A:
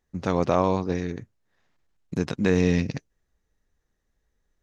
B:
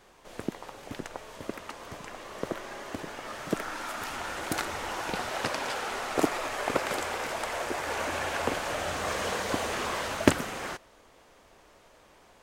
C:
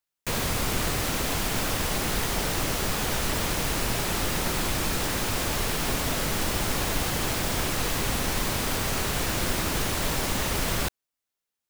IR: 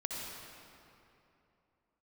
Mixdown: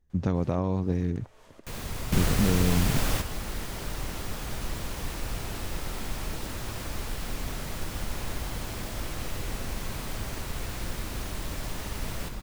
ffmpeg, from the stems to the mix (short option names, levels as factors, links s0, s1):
-filter_complex "[0:a]lowshelf=f=410:g=10.5,acompressor=threshold=0.141:ratio=6,volume=0.447,asplit=2[s0][s1];[1:a]acompressor=threshold=0.00891:ratio=3,adelay=100,volume=0.316[s2];[2:a]adelay=1400,volume=0.596,asplit=2[s3][s4];[s4]volume=0.266[s5];[s1]apad=whole_len=577341[s6];[s3][s6]sidechaingate=range=0.2:threshold=0.00112:ratio=16:detection=peak[s7];[3:a]atrim=start_sample=2205[s8];[s5][s8]afir=irnorm=-1:irlink=0[s9];[s0][s2][s7][s9]amix=inputs=4:normalize=0,lowshelf=f=120:g=9"